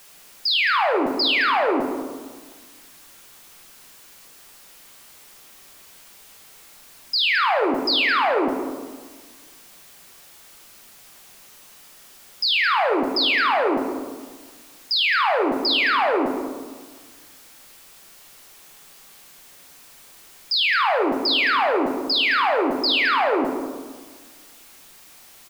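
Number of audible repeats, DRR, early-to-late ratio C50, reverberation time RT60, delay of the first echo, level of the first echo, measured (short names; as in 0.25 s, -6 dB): 1, 2.0 dB, 4.0 dB, 1.5 s, 0.216 s, -12.0 dB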